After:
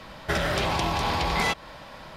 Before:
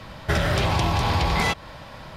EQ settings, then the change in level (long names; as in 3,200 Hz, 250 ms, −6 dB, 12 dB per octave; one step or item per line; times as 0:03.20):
parametric band 100 Hz −8.5 dB 0.9 octaves
low-shelf EQ 140 Hz −3 dB
−1.5 dB